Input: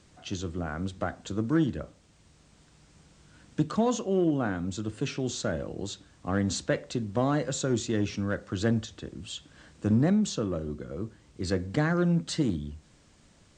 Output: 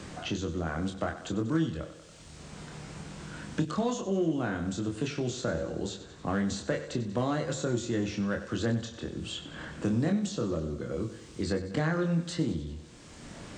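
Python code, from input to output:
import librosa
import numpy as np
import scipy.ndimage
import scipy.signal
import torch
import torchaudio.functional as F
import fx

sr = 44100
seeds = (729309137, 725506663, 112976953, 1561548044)

y = fx.doubler(x, sr, ms=25.0, db=-4.0)
y = fx.echo_thinned(y, sr, ms=94, feedback_pct=51, hz=160.0, wet_db=-13.5)
y = fx.band_squash(y, sr, depth_pct=70)
y = F.gain(torch.from_numpy(y), -3.5).numpy()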